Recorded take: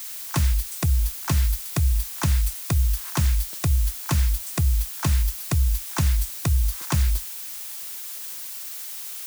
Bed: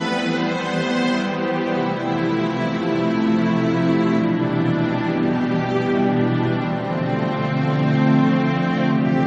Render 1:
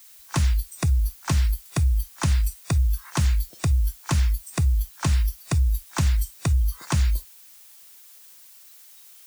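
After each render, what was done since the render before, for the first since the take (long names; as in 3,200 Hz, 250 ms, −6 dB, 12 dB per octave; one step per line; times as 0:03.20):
noise reduction from a noise print 14 dB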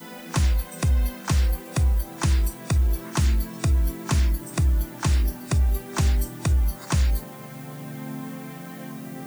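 mix in bed −18.5 dB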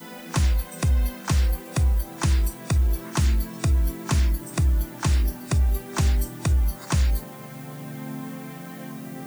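no processing that can be heard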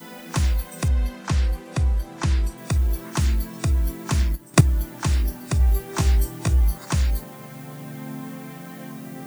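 0:00.88–0:02.58: high-frequency loss of the air 51 metres
0:04.17–0:04.61: transient designer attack +12 dB, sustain −10 dB
0:05.58–0:06.78: double-tracking delay 18 ms −5 dB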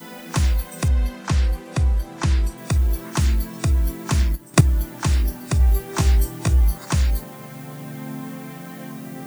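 level +2 dB
brickwall limiter −1 dBFS, peak gain reduction 1.5 dB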